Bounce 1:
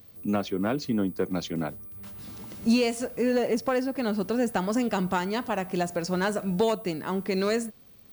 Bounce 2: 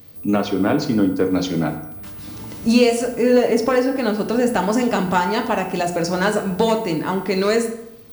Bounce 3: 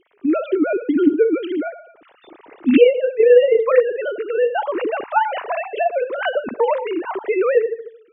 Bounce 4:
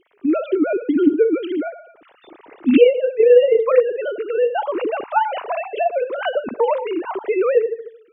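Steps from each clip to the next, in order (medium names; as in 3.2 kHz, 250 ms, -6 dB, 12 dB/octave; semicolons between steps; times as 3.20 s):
FDN reverb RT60 0.85 s, low-frequency decay 1×, high-frequency decay 0.65×, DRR 4 dB; trim +7 dB
formants replaced by sine waves; trim +1 dB
dynamic bell 1.8 kHz, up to -7 dB, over -43 dBFS, Q 3.2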